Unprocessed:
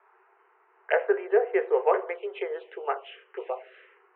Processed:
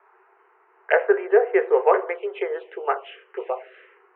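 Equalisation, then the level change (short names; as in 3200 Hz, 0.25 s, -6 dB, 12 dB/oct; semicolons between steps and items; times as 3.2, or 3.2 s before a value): dynamic EQ 1500 Hz, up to +3 dB, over -42 dBFS, Q 0.95; tone controls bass +9 dB, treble -9 dB; +4.0 dB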